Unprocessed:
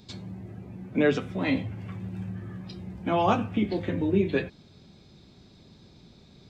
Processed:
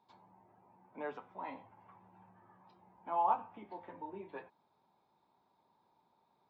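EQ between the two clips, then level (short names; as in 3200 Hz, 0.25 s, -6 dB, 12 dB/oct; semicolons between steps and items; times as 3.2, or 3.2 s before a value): band-pass 920 Hz, Q 7.8; +1.5 dB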